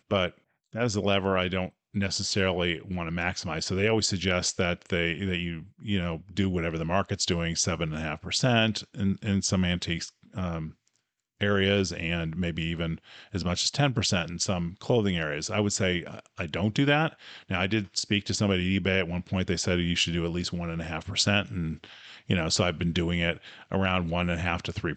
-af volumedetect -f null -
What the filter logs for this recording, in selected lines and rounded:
mean_volume: -28.2 dB
max_volume: -9.9 dB